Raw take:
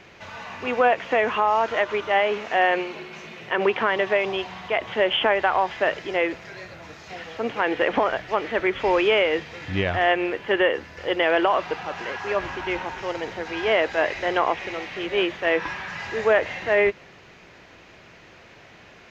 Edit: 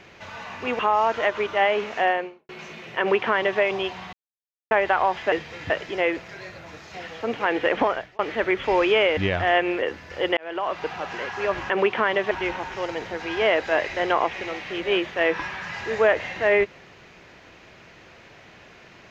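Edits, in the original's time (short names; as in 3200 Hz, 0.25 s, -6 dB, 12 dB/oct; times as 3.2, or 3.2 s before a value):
0.79–1.33 cut
2.5–3.03 studio fade out
3.53–4.14 copy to 12.57
4.67–5.25 mute
8.01–8.35 fade out
9.33–9.71 move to 5.86
10.36–10.69 cut
11.24–11.79 fade in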